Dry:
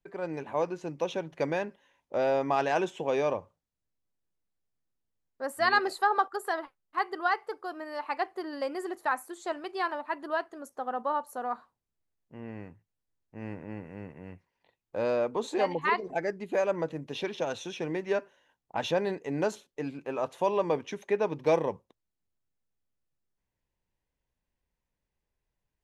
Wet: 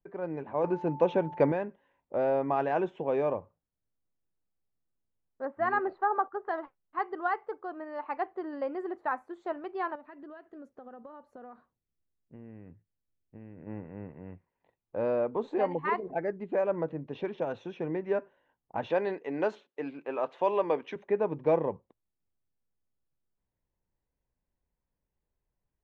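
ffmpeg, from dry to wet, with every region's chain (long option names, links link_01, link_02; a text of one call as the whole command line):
ffmpeg -i in.wav -filter_complex "[0:a]asettb=1/sr,asplit=3[link_01][link_02][link_03];[link_01]atrim=end=0.644[link_04];[link_02]atrim=start=0.64:end=1.52,asetpts=PTS-STARTPTS,afade=type=in:duration=0.004:curve=qsin,afade=type=out:start_time=0.876:duration=0.004:curve=qsin,acontrast=72,aeval=exprs='val(0)+0.0112*sin(2*PI*880*n/s)':channel_layout=same[link_05];[link_03]atrim=start=1.516[link_06];[link_04][link_05]acrossfade=duration=0.004:curve1=hsin:curve2=qsin[link_07];[link_07][link_06]acrossfade=duration=0.004:curve1=qsin:curve2=hsin,asettb=1/sr,asplit=3[link_08][link_09][link_10];[link_08]atrim=end=5.454[link_11];[link_09]atrim=start=5.45:end=6.49,asetpts=PTS-STARTPTS,afade=type=in:duration=0.004:curve=qsin,afade=type=out:start_time=1.036:duration=0.004:curve=qsin,lowpass=2000,bandreject=frequency=480:width=8.7[link_12];[link_10]atrim=start=6.486[link_13];[link_11][link_12]acrossfade=duration=0.004:curve1=hsin:curve2=qsin[link_14];[link_14][link_13]acrossfade=duration=0.004:curve1=qsin:curve2=hsin,asettb=1/sr,asplit=3[link_15][link_16][link_17];[link_15]atrim=end=9.954[link_18];[link_16]atrim=start=9.95:end=13.67,asetpts=PTS-STARTPTS,afade=type=in:duration=0.004:curve=qsin,afade=type=out:start_time=3.716:duration=0.004:curve=qsin,equalizer=frequency=930:width_type=o:width=1.1:gain=-10,acompressor=threshold=-42dB:ratio=12:attack=3.2:release=140:knee=1:detection=peak[link_19];[link_17]atrim=start=13.666[link_20];[link_18][link_19]acrossfade=duration=0.004:curve1=hsin:curve2=qsin[link_21];[link_21][link_20]acrossfade=duration=0.004:curve1=qsin:curve2=hsin,asettb=1/sr,asplit=3[link_22][link_23][link_24];[link_22]atrim=end=18.904[link_25];[link_23]atrim=start=18.9:end=20.96,asetpts=PTS-STARTPTS,afade=type=in:duration=0.004:curve=qsin,afade=type=out:start_time=2.056:duration=0.004:curve=qsin,highpass=270,equalizer=frequency=3700:width_type=o:width=2.4:gain=9.5[link_26];[link_24]atrim=start=20.956[link_27];[link_25][link_26]acrossfade=duration=0.004:curve1=hsin:curve2=qsin[link_28];[link_28][link_27]acrossfade=duration=0.004:curve1=qsin:curve2=hsin,lowpass=2300,tiltshelf=frequency=1400:gain=4,volume=-3.5dB" out.wav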